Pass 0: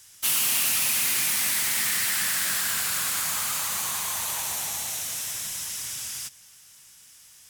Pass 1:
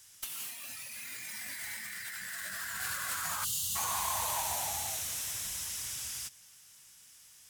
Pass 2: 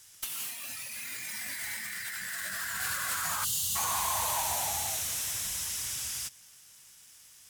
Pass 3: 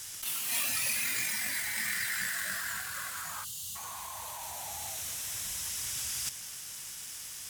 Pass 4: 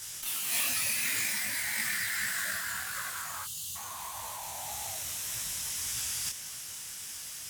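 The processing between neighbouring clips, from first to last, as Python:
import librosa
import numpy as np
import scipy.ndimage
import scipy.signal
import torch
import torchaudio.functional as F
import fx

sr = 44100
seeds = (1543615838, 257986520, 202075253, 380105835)

y1 = fx.spec_box(x, sr, start_s=3.44, length_s=0.32, low_hz=230.0, high_hz=2700.0, gain_db=-23)
y1 = fx.noise_reduce_blind(y1, sr, reduce_db=9)
y1 = fx.over_compress(y1, sr, threshold_db=-36.0, ratio=-0.5)
y2 = fx.leveller(y1, sr, passes=1)
y3 = fx.over_compress(y2, sr, threshold_db=-42.0, ratio=-1.0)
y3 = F.gain(torch.from_numpy(y3), 5.5).numpy()
y4 = fx.detune_double(y3, sr, cents=58)
y4 = F.gain(torch.from_numpy(y4), 5.0).numpy()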